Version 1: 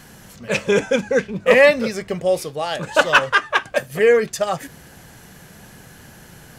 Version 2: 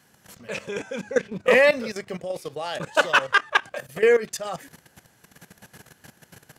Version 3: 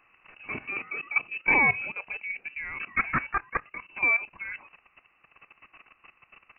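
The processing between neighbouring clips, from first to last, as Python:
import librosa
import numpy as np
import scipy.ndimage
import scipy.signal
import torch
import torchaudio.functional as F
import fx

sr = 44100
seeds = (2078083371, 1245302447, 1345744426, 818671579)

y1 = scipy.signal.sosfilt(scipy.signal.butter(4, 68.0, 'highpass', fs=sr, output='sos'), x)
y1 = fx.low_shelf(y1, sr, hz=230.0, db=-5.5)
y1 = fx.level_steps(y1, sr, step_db=15)
y2 = fx.rider(y1, sr, range_db=3, speed_s=2.0)
y2 = fx.dynamic_eq(y2, sr, hz=1300.0, q=0.72, threshold_db=-32.0, ratio=4.0, max_db=-5)
y2 = fx.freq_invert(y2, sr, carrier_hz=2800)
y2 = F.gain(torch.from_numpy(y2), -4.5).numpy()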